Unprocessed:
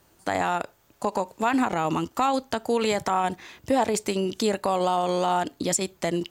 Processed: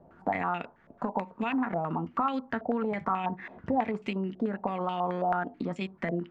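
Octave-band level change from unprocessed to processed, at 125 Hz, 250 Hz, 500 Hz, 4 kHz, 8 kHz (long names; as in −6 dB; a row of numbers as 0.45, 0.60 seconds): −2.5 dB, −3.5 dB, −7.5 dB, −14.0 dB, below −35 dB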